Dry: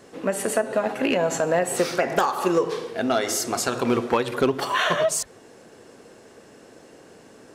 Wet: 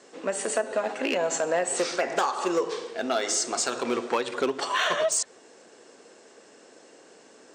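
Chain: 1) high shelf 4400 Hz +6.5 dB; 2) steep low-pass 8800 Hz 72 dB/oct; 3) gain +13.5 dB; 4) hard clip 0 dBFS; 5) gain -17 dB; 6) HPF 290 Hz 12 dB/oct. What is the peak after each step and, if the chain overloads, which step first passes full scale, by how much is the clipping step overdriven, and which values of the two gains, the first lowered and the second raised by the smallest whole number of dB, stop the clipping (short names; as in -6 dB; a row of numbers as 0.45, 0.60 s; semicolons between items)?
-7.5, -8.5, +5.0, 0.0, -17.0, -11.0 dBFS; step 3, 5.0 dB; step 3 +8.5 dB, step 5 -12 dB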